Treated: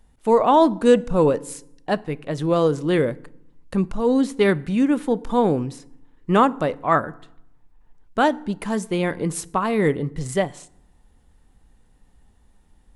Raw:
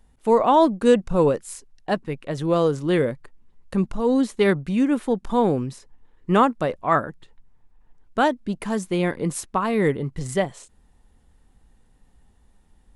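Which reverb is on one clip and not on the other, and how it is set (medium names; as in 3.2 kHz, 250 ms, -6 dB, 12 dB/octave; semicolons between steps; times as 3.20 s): FDN reverb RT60 0.76 s, low-frequency decay 1.35×, high-frequency decay 0.65×, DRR 18 dB; trim +1 dB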